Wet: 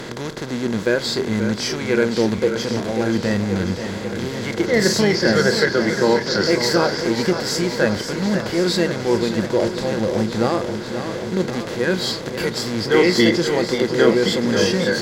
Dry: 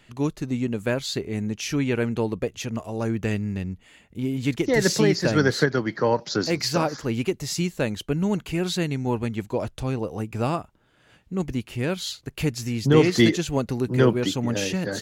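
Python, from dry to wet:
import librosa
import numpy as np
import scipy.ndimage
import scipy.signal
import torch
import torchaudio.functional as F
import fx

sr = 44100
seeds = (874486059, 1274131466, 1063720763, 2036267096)

y = fx.bin_compress(x, sr, power=0.2)
y = fx.noise_reduce_blind(y, sr, reduce_db=14)
y = fx.echo_warbled(y, sr, ms=535, feedback_pct=71, rate_hz=2.8, cents=91, wet_db=-9)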